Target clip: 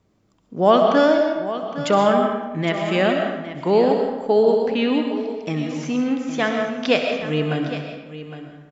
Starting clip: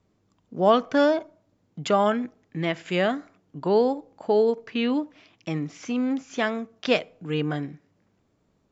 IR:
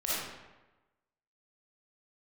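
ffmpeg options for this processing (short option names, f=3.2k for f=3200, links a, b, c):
-filter_complex "[0:a]aecho=1:1:811:0.224,asplit=2[a][b];[1:a]atrim=start_sample=2205,adelay=65[c];[b][c]afir=irnorm=-1:irlink=0,volume=-10.5dB[d];[a][d]amix=inputs=2:normalize=0,volume=3.5dB"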